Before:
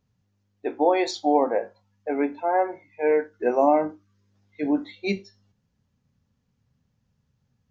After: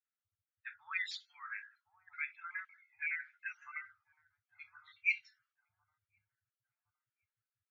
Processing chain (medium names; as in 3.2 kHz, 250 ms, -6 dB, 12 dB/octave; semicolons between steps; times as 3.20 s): random holes in the spectrogram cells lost 27%; Chebyshev band-stop 110–1300 Hz, order 5; on a send: feedback echo behind a low-pass 1062 ms, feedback 31%, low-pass 650 Hz, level -8 dB; on the sum: auto-wah 650–2400 Hz, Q 2.8, up, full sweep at -39.5 dBFS; trim +3 dB; Vorbis 48 kbps 22.05 kHz